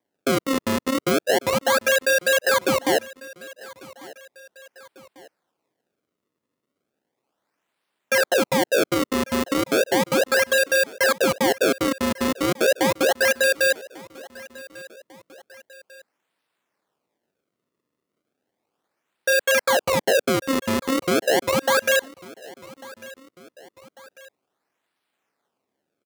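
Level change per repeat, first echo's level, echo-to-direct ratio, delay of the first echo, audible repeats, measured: −6.0 dB, −21.0 dB, −20.0 dB, 1,146 ms, 2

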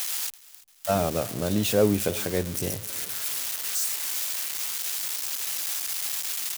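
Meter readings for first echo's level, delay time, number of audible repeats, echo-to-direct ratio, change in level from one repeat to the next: −21.0 dB, 341 ms, 3, −20.0 dB, −6.5 dB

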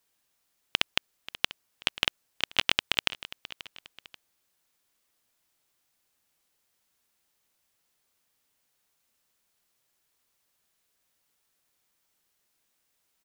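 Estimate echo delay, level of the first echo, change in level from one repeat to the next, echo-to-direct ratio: 535 ms, −16.5 dB, −8.0 dB, −16.0 dB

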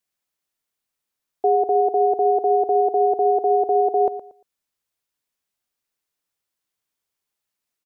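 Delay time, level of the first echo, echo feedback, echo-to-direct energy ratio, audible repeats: 116 ms, −13.0 dB, 22%, −13.0 dB, 2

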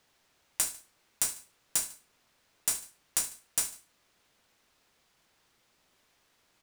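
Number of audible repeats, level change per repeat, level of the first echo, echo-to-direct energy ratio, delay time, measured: 2, −6.5 dB, −16.0 dB, −15.0 dB, 74 ms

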